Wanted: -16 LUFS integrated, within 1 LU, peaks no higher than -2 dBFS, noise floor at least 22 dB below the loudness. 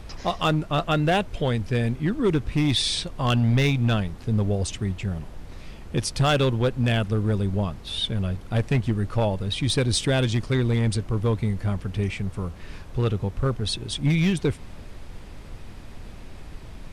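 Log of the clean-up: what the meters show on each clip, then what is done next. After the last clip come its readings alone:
clipped 1.5%; flat tops at -15.0 dBFS; noise floor -41 dBFS; noise floor target -47 dBFS; loudness -24.5 LUFS; peak -15.0 dBFS; loudness target -16.0 LUFS
-> clip repair -15 dBFS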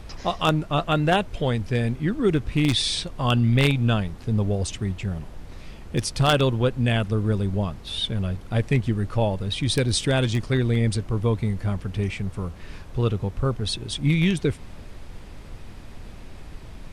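clipped 0.0%; noise floor -41 dBFS; noise floor target -46 dBFS
-> noise print and reduce 6 dB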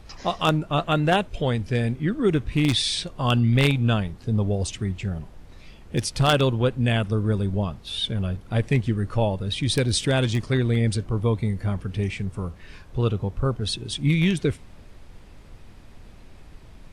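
noise floor -47 dBFS; loudness -24.0 LUFS; peak -6.0 dBFS; loudness target -16.0 LUFS
-> gain +8 dB; limiter -2 dBFS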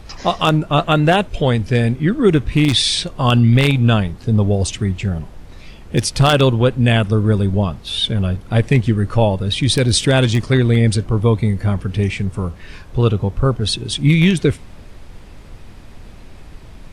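loudness -16.5 LUFS; peak -2.0 dBFS; noise floor -39 dBFS

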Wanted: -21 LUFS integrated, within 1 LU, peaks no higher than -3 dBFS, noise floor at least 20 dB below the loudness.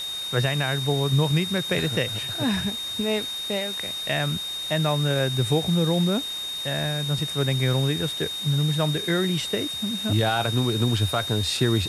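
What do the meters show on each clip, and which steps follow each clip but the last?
steady tone 3700 Hz; tone level -29 dBFS; noise floor -32 dBFS; noise floor target -44 dBFS; loudness -24.0 LUFS; peak -9.5 dBFS; loudness target -21.0 LUFS
-> notch 3700 Hz, Q 30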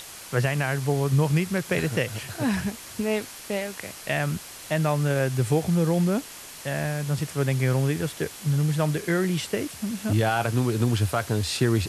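steady tone none; noise floor -42 dBFS; noise floor target -46 dBFS
-> denoiser 6 dB, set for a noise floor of -42 dBFS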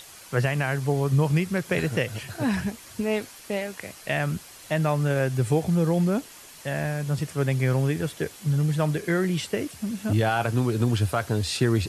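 noise floor -46 dBFS; loudness -26.0 LUFS; peak -10.0 dBFS; loudness target -21.0 LUFS
-> gain +5 dB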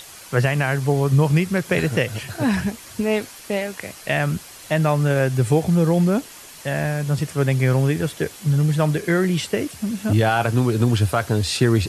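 loudness -21.0 LUFS; peak -5.0 dBFS; noise floor -41 dBFS

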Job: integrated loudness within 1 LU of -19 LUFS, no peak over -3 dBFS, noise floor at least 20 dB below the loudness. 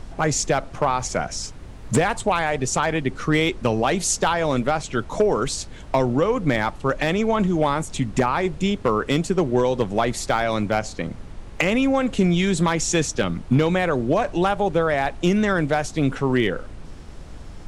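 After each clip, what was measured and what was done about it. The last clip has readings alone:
clipped 0.5%; flat tops at -10.0 dBFS; noise floor -39 dBFS; noise floor target -42 dBFS; loudness -22.0 LUFS; peak -10.0 dBFS; loudness target -19.0 LUFS
-> clip repair -10 dBFS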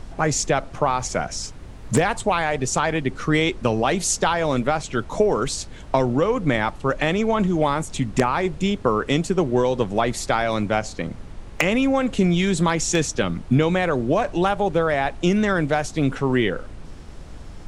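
clipped 0.0%; noise floor -39 dBFS; noise floor target -42 dBFS
-> noise print and reduce 6 dB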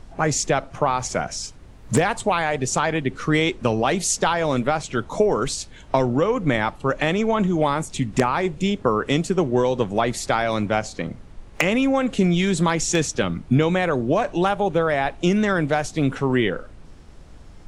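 noise floor -44 dBFS; loudness -22.0 LUFS; peak -1.0 dBFS; loudness target -19.0 LUFS
-> gain +3 dB; limiter -3 dBFS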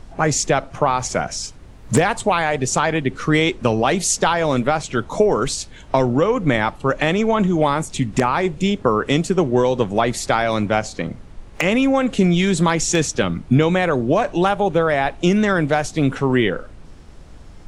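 loudness -19.0 LUFS; peak -3.0 dBFS; noise floor -41 dBFS

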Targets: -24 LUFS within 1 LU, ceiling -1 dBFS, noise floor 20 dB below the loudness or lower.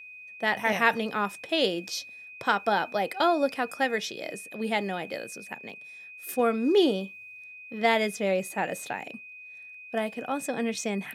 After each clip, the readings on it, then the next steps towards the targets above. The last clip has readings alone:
steady tone 2500 Hz; tone level -43 dBFS; loudness -28.0 LUFS; peak -6.5 dBFS; loudness target -24.0 LUFS
-> notch 2500 Hz, Q 30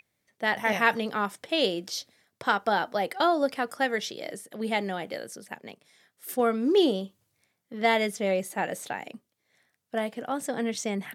steady tone none; loudness -28.0 LUFS; peak -6.5 dBFS; loudness target -24.0 LUFS
-> gain +4 dB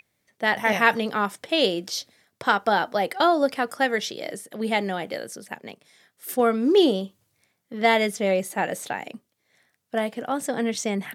loudness -24.0 LUFS; peak -2.5 dBFS; noise floor -74 dBFS

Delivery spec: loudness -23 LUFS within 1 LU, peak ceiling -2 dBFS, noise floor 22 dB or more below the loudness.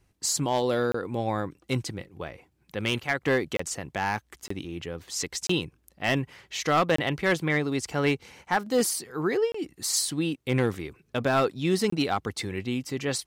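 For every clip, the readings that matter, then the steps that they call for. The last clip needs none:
clipped 0.3%; flat tops at -16.0 dBFS; dropouts 7; longest dropout 24 ms; loudness -28.0 LUFS; peak -16.0 dBFS; loudness target -23.0 LUFS
-> clip repair -16 dBFS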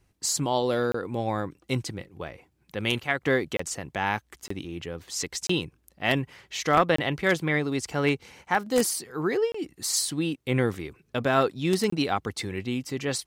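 clipped 0.0%; dropouts 7; longest dropout 24 ms
-> interpolate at 0.92/3.57/4.48/5.47/6.96/9.52/11.9, 24 ms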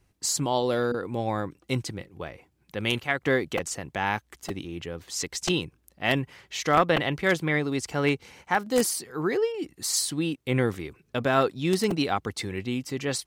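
dropouts 0; loudness -27.0 LUFS; peak -7.0 dBFS; loudness target -23.0 LUFS
-> gain +4 dB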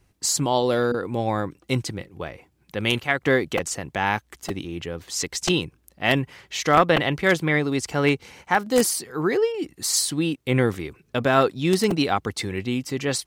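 loudness -23.0 LUFS; peak -3.0 dBFS; noise floor -65 dBFS

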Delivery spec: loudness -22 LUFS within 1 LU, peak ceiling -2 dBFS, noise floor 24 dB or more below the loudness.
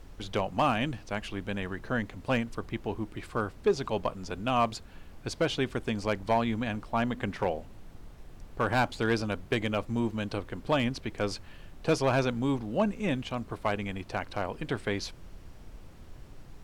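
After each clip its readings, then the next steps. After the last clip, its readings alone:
clipped 0.2%; flat tops at -17.5 dBFS; noise floor -49 dBFS; noise floor target -55 dBFS; loudness -31.0 LUFS; peak -17.5 dBFS; loudness target -22.0 LUFS
-> clip repair -17.5 dBFS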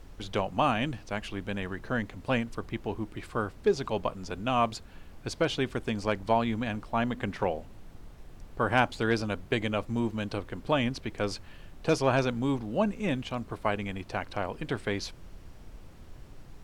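clipped 0.0%; noise floor -49 dBFS; noise floor target -55 dBFS
-> noise print and reduce 6 dB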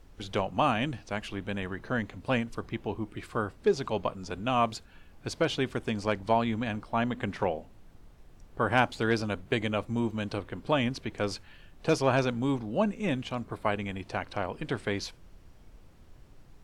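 noise floor -54 dBFS; noise floor target -55 dBFS
-> noise print and reduce 6 dB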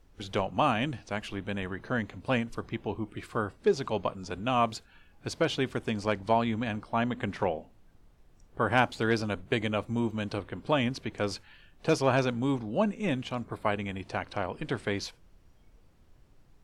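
noise floor -60 dBFS; loudness -31.0 LUFS; peak -8.5 dBFS; loudness target -22.0 LUFS
-> gain +9 dB; limiter -2 dBFS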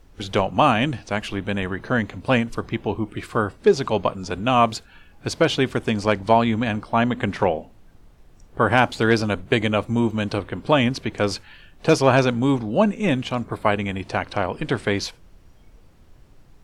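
loudness -22.0 LUFS; peak -2.0 dBFS; noise floor -51 dBFS

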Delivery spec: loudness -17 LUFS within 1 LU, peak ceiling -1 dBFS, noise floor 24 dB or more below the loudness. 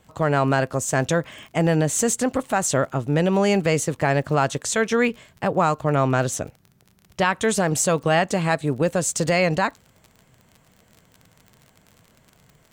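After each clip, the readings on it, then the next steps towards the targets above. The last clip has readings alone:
ticks 37/s; loudness -21.5 LUFS; peak -7.5 dBFS; loudness target -17.0 LUFS
-> de-click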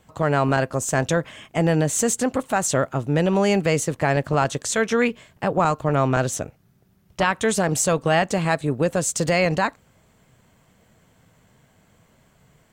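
ticks 0.079/s; loudness -21.5 LUFS; peak -7.5 dBFS; loudness target -17.0 LUFS
-> gain +4.5 dB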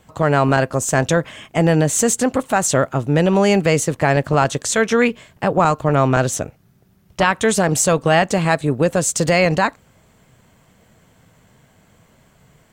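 loudness -17.0 LUFS; peak -3.0 dBFS; noise floor -55 dBFS

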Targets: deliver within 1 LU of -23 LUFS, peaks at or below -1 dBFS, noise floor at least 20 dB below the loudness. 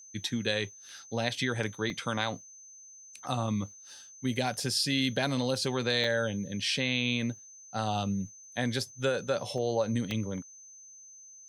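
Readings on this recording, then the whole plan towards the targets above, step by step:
dropouts 5; longest dropout 1.7 ms; steady tone 6200 Hz; tone level -49 dBFS; loudness -31.0 LUFS; peak -12.0 dBFS; loudness target -23.0 LUFS
-> interpolate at 1.9/4.6/6.04/9.58/10.11, 1.7 ms; notch 6200 Hz, Q 30; gain +8 dB

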